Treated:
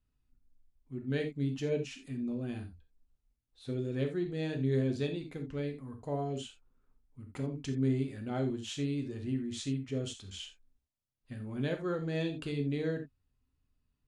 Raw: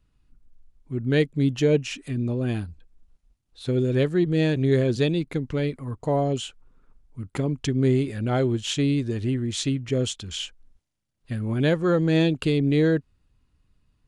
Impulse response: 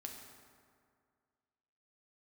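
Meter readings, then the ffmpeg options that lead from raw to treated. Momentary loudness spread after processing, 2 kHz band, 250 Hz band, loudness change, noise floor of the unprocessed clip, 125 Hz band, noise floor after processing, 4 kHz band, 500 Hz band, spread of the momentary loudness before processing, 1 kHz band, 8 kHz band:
13 LU, -12.5 dB, -11.0 dB, -11.5 dB, -70 dBFS, -11.5 dB, -82 dBFS, -12.5 dB, -12.0 dB, 11 LU, -11.5 dB, -12.5 dB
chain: -filter_complex "[1:a]atrim=start_sample=2205,atrim=end_sample=3969[s0];[0:a][s0]afir=irnorm=-1:irlink=0,volume=0.398"

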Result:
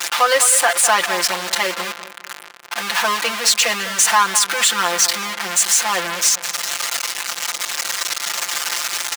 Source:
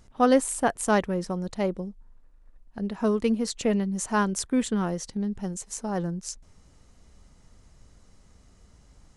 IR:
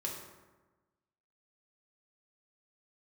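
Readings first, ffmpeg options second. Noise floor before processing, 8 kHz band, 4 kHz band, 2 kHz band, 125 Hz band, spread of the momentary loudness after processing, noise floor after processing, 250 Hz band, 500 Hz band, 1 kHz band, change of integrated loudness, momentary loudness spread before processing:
-57 dBFS, +20.0 dB, +23.0 dB, +17.5 dB, -10.0 dB, 11 LU, -37 dBFS, -10.5 dB, +2.5 dB, +11.5 dB, +10.5 dB, 13 LU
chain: -filter_complex "[0:a]aeval=exprs='val(0)+0.5*0.0562*sgn(val(0))':c=same,highpass=1400,highshelf=f=6900:g=-6.5,aecho=1:1:5.8:0.99,asplit=2[s0][s1];[s1]adelay=203,lowpass=f=1900:p=1,volume=0.266,asplit=2[s2][s3];[s3]adelay=203,lowpass=f=1900:p=1,volume=0.49,asplit=2[s4][s5];[s5]adelay=203,lowpass=f=1900:p=1,volume=0.49,asplit=2[s6][s7];[s7]adelay=203,lowpass=f=1900:p=1,volume=0.49,asplit=2[s8][s9];[s9]adelay=203,lowpass=f=1900:p=1,volume=0.49[s10];[s0][s2][s4][s6][s8][s10]amix=inputs=6:normalize=0,agate=range=0.0224:threshold=0.00631:ratio=3:detection=peak,alimiter=level_in=8.41:limit=0.891:release=50:level=0:latency=1,volume=0.668"

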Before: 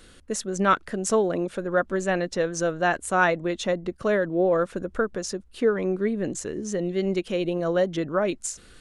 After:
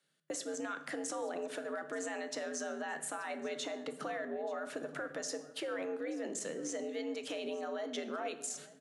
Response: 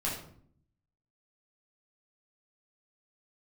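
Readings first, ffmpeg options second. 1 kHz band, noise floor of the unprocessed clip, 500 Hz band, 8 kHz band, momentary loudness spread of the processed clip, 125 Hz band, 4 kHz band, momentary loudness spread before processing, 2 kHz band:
-15.5 dB, -52 dBFS, -15.0 dB, -8.0 dB, 2 LU, -28.0 dB, -7.5 dB, 7 LU, -14.0 dB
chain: -filter_complex "[0:a]highpass=f=74:w=0.5412,highpass=f=74:w=1.3066,agate=range=0.0447:threshold=0.00562:ratio=16:detection=peak,equalizer=f=280:t=o:w=1.7:g=-9.5,alimiter=level_in=1.58:limit=0.0631:level=0:latency=1:release=24,volume=0.631,acompressor=threshold=0.00891:ratio=3,afreqshift=81,aecho=1:1:881:0.1,asplit=2[s0][s1];[1:a]atrim=start_sample=2205,asetrate=28224,aresample=44100[s2];[s1][s2]afir=irnorm=-1:irlink=0,volume=0.188[s3];[s0][s3]amix=inputs=2:normalize=0,volume=1.12"

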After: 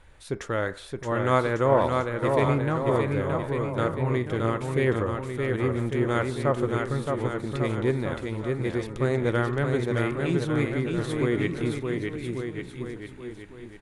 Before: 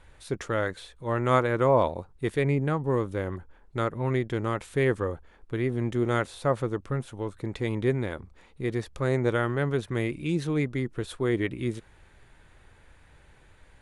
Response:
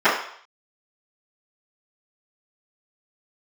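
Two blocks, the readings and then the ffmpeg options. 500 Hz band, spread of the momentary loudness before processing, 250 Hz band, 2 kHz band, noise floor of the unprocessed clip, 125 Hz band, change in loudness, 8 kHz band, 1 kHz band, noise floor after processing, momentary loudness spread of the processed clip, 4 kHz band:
+2.5 dB, 11 LU, +2.5 dB, +2.5 dB, -57 dBFS, +2.0 dB, +1.5 dB, +2.0 dB, +2.5 dB, -45 dBFS, 11 LU, +2.0 dB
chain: -filter_complex "[0:a]aecho=1:1:620|1147|1595|1976|2299:0.631|0.398|0.251|0.158|0.1,asplit=2[s0][s1];[1:a]atrim=start_sample=2205,adelay=26[s2];[s1][s2]afir=irnorm=-1:irlink=0,volume=0.0119[s3];[s0][s3]amix=inputs=2:normalize=0"

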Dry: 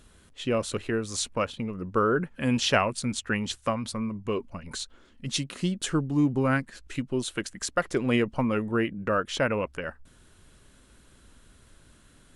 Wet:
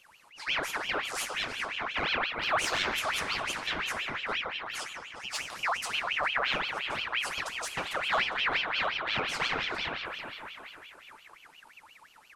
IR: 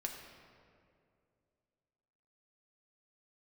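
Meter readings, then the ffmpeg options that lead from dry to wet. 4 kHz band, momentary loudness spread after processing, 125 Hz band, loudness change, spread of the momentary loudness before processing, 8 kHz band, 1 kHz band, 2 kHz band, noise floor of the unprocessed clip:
+3.0 dB, 11 LU, -18.0 dB, -2.5 dB, 11 LU, -5.0 dB, 0.0 dB, +4.0 dB, -57 dBFS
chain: -filter_complex "[0:a]asplit=2[s0][s1];[s1]adelay=405,lowpass=f=2300:p=1,volume=0.398,asplit=2[s2][s3];[s3]adelay=405,lowpass=f=2300:p=1,volume=0.41,asplit=2[s4][s5];[s5]adelay=405,lowpass=f=2300:p=1,volume=0.41,asplit=2[s6][s7];[s7]adelay=405,lowpass=f=2300:p=1,volume=0.41,asplit=2[s8][s9];[s9]adelay=405,lowpass=f=2300:p=1,volume=0.41[s10];[s0][s2][s4][s6][s8][s10]amix=inputs=6:normalize=0,asoftclip=type=tanh:threshold=0.0944[s11];[1:a]atrim=start_sample=2205[s12];[s11][s12]afir=irnorm=-1:irlink=0,aeval=exprs='val(0)*sin(2*PI*1900*n/s+1900*0.55/5.7*sin(2*PI*5.7*n/s))':c=same"

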